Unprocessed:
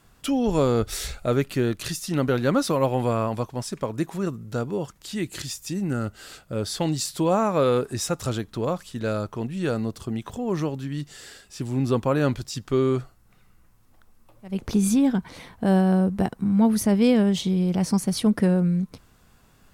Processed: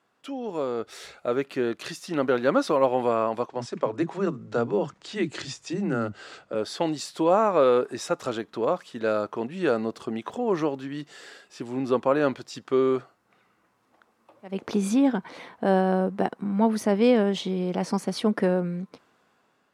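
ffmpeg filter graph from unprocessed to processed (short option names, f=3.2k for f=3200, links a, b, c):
-filter_complex "[0:a]asettb=1/sr,asplit=3[a][b][c];[a]atrim=end=3.464[d];[b]atrim=start=3.46:end=6.55,asetpts=PTS-STARTPTS,afade=t=in:d=0.004:c=qsin,afade=t=out:st=3.086:d=0.004:c=qsin,lowpass=f=8.3k:w=0.5412,lowpass=f=8.3k:w=1.3066,lowshelf=f=180:g=11.5,acrossover=split=240[e][f];[e]adelay=30[g];[g][f]amix=inputs=2:normalize=0,atrim=end_sample=136269[h];[c]atrim=start=6.546[i];[d][h]acrossfade=d=0.004:c1=hsin:c2=qsin[j];[j][i]acrossfade=d=0.004:c1=qsin:c2=hsin,highpass=340,aemphasis=mode=reproduction:type=75fm,dynaudnorm=f=370:g=7:m=13dB,volume=-7dB"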